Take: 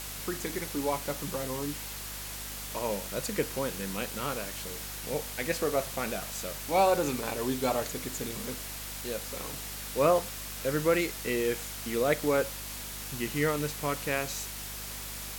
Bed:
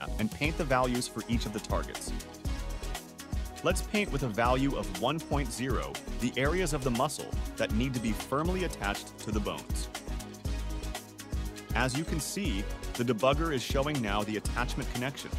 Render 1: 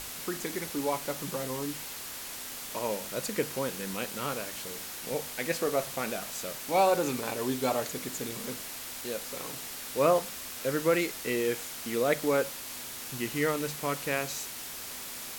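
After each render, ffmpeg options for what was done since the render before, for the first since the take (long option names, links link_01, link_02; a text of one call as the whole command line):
ffmpeg -i in.wav -af "bandreject=frequency=50:width_type=h:width=6,bandreject=frequency=100:width_type=h:width=6,bandreject=frequency=150:width_type=h:width=6,bandreject=frequency=200:width_type=h:width=6" out.wav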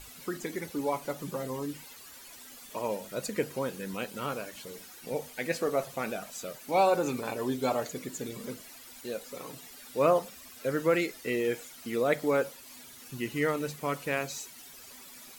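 ffmpeg -i in.wav -af "afftdn=noise_reduction=13:noise_floor=-41" out.wav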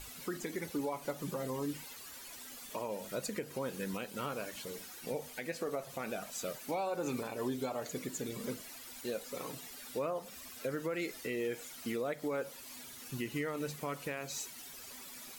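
ffmpeg -i in.wav -af "acompressor=threshold=-29dB:ratio=6,alimiter=level_in=3dB:limit=-24dB:level=0:latency=1:release=248,volume=-3dB" out.wav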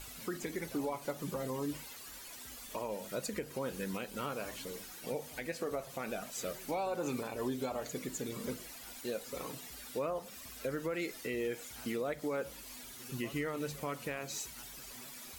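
ffmpeg -i in.wav -i bed.wav -filter_complex "[1:a]volume=-27dB[link_01];[0:a][link_01]amix=inputs=2:normalize=0" out.wav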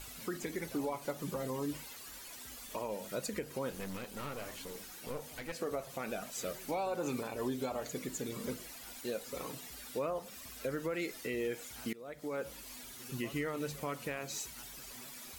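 ffmpeg -i in.wav -filter_complex "[0:a]asettb=1/sr,asplit=3[link_01][link_02][link_03];[link_01]atrim=end=3.704[link_04];[link_02]atrim=start=3.7:end=5.52,asetpts=PTS-STARTPTS,afade=type=in:duration=0.004:curve=qsin,afade=type=out:start_time=1.816:duration=0.004:curve=qsin,aeval=exprs='clip(val(0),-1,0.00501)':channel_layout=same[link_05];[link_03]atrim=start=5.516[link_06];[link_04][link_05]acrossfade=duration=0.004:curve1=hsin:curve2=qsin[link_07];[link_07][link_06]acrossfade=duration=0.004:curve1=qsin:curve2=hsin,asplit=2[link_08][link_09];[link_08]atrim=end=11.93,asetpts=PTS-STARTPTS,afade=type=out:start_time=11.926:duration=0.004:curve=hsin:silence=0.0707946[link_10];[link_09]atrim=start=11.93,asetpts=PTS-STARTPTS,afade=type=in:duration=0.56:silence=0.0707946[link_11];[link_10][link_11]concat=n=2:v=0:a=1" out.wav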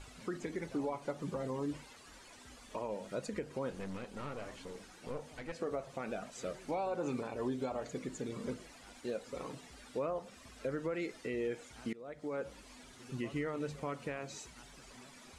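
ffmpeg -i in.wav -af "lowpass=frequency=9300:width=0.5412,lowpass=frequency=9300:width=1.3066,highshelf=frequency=2600:gain=-9" out.wav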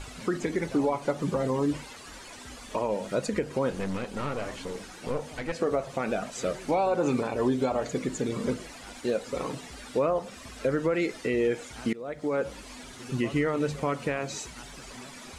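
ffmpeg -i in.wav -af "volume=11dB" out.wav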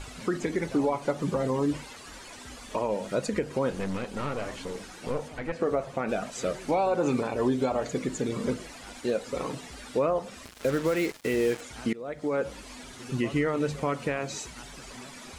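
ffmpeg -i in.wav -filter_complex "[0:a]asettb=1/sr,asplit=3[link_01][link_02][link_03];[link_01]atrim=end=5.284[link_04];[link_02]atrim=start=5.28:end=6.09,asetpts=PTS-STARTPTS,afade=type=in:duration=0.004:curve=qsin,afade=type=out:start_time=0.806:duration=0.004:curve=qsin,acrossover=split=2600[link_05][link_06];[link_06]acompressor=threshold=-54dB:ratio=4:attack=1:release=60[link_07];[link_05][link_07]amix=inputs=2:normalize=0[link_08];[link_03]atrim=start=6.086[link_09];[link_04][link_08]acrossfade=duration=0.004:curve1=hsin:curve2=qsin[link_10];[link_10][link_09]acrossfade=duration=0.004:curve1=qsin:curve2=hsin,asettb=1/sr,asplit=3[link_11][link_12][link_13];[link_11]atrim=end=10.454[link_14];[link_12]atrim=start=10.45:end=11.61,asetpts=PTS-STARTPTS,afade=type=in:duration=0.004:curve=qsin,afade=type=out:start_time=1.156:duration=0.004:curve=qsin,acrusher=bits=5:mix=0:aa=0.5[link_15];[link_13]atrim=start=11.606[link_16];[link_14][link_15]acrossfade=duration=0.004:curve1=hsin:curve2=qsin[link_17];[link_17][link_16]acrossfade=duration=0.004:curve1=qsin:curve2=hsin" out.wav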